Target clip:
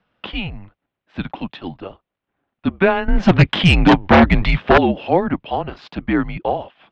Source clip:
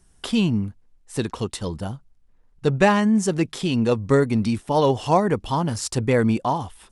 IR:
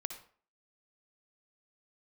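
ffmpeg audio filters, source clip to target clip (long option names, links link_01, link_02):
-filter_complex "[0:a]highpass=frequency=320:width_type=q:width=0.5412,highpass=frequency=320:width_type=q:width=1.307,lowpass=frequency=3600:width_type=q:width=0.5176,lowpass=frequency=3600:width_type=q:width=0.7071,lowpass=frequency=3600:width_type=q:width=1.932,afreqshift=-190,asettb=1/sr,asplit=3[link_01][link_02][link_03];[link_01]atrim=end=3.084[link_04];[link_02]atrim=start=3.08:end=4.78,asetpts=PTS-STARTPTS,afade=type=in:duration=0.004:curve=qsin,afade=type=out:start_time=1.696:duration=0.004:curve=qsin,aeval=exprs='0.398*sin(PI/2*3.55*val(0)/0.398)':channel_layout=same[link_05];[link_03]atrim=start=4.776[link_06];[link_04][link_05]acrossfade=duration=0.004:curve1=hsin:curve2=qsin[link_07];[link_07][link_06]acrossfade=duration=0.004:curve1=qsin:curve2=hsin,volume=3dB"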